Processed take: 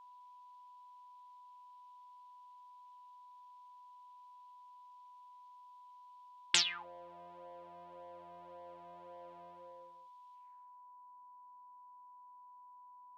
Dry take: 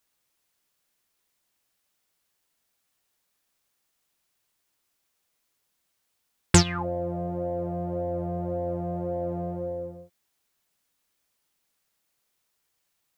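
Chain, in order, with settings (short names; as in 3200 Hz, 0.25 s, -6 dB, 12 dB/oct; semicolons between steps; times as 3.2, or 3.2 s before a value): band-pass sweep 3300 Hz -> 280 Hz, 10.32–11.06; whine 990 Hz -56 dBFS; low shelf 480 Hz -5 dB; gain +2.5 dB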